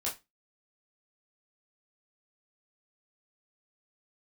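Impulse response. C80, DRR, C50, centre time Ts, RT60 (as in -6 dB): 20.0 dB, -5.5 dB, 11.5 dB, 24 ms, 0.20 s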